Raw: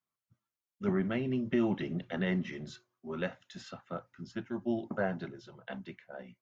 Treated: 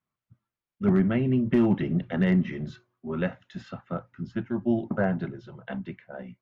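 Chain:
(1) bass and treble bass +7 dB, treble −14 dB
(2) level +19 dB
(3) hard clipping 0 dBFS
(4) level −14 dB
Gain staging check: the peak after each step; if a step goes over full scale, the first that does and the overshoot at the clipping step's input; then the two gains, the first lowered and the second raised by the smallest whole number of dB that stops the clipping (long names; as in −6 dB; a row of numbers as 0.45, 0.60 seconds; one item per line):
−15.0, +4.0, 0.0, −14.0 dBFS
step 2, 4.0 dB
step 2 +15 dB, step 4 −10 dB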